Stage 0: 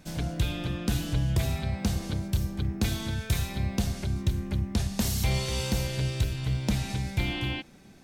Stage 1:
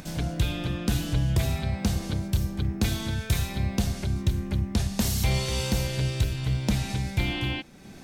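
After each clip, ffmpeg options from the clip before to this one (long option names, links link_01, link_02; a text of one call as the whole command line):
ffmpeg -i in.wav -af "acompressor=mode=upward:threshold=-38dB:ratio=2.5,volume=2dB" out.wav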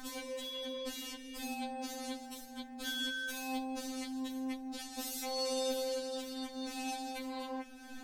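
ffmpeg -i in.wav -af "equalizer=frequency=83:width_type=o:width=2.4:gain=-2.5,alimiter=level_in=1dB:limit=-24dB:level=0:latency=1:release=145,volume=-1dB,afftfilt=real='re*3.46*eq(mod(b,12),0)':imag='im*3.46*eq(mod(b,12),0)':win_size=2048:overlap=0.75" out.wav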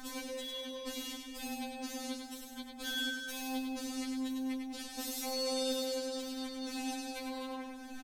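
ffmpeg -i in.wav -af "aecho=1:1:100|200|300|400|500:0.562|0.214|0.0812|0.0309|0.0117" out.wav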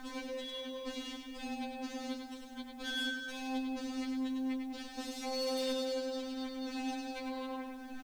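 ffmpeg -i in.wav -af "adynamicsmooth=sensitivity=6.5:basefreq=4000,aeval=exprs='0.0316*(abs(mod(val(0)/0.0316+3,4)-2)-1)':channel_layout=same,acrusher=bits=10:mix=0:aa=0.000001,volume=1dB" out.wav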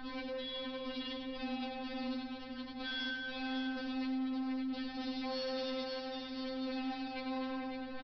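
ffmpeg -i in.wav -af "aeval=exprs='val(0)+0.000562*(sin(2*PI*60*n/s)+sin(2*PI*2*60*n/s)/2+sin(2*PI*3*60*n/s)/3+sin(2*PI*4*60*n/s)/4+sin(2*PI*5*60*n/s)/5)':channel_layout=same,aresample=11025,asoftclip=type=tanh:threshold=-39dB,aresample=44100,aecho=1:1:558:0.473,volume=3dB" out.wav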